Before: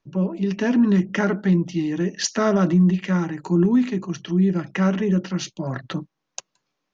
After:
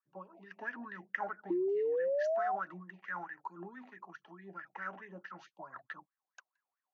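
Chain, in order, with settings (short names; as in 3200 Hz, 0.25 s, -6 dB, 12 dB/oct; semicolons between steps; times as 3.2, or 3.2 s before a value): wah 4.6 Hz 720–1800 Hz, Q 11; painted sound rise, 1.5–2.56, 340–780 Hz -28 dBFS; compressor, threshold -30 dBFS, peak gain reduction 5.5 dB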